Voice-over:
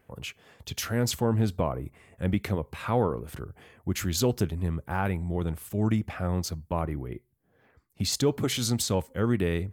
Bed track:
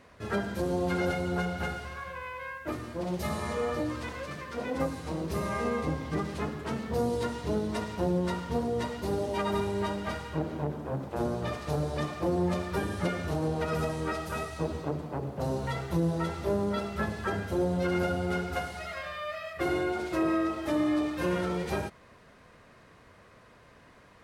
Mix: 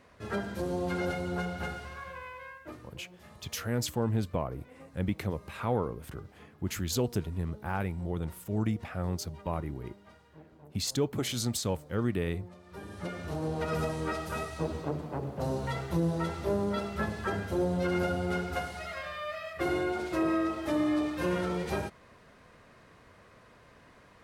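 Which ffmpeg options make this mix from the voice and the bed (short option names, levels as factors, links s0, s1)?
-filter_complex "[0:a]adelay=2750,volume=0.596[s0];[1:a]volume=7.94,afade=t=out:st=2.13:d=0.9:silence=0.112202,afade=t=in:st=12.62:d=1.12:silence=0.0891251[s1];[s0][s1]amix=inputs=2:normalize=0"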